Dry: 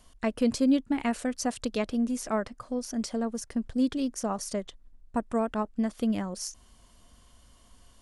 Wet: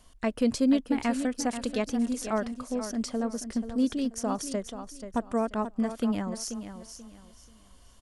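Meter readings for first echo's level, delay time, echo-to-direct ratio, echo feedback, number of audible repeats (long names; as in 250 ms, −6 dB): −10.0 dB, 484 ms, −9.5 dB, 27%, 3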